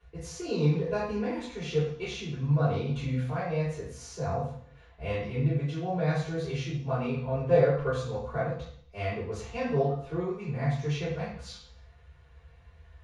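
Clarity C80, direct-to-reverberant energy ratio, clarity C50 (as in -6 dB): 5.5 dB, -13.0 dB, 2.0 dB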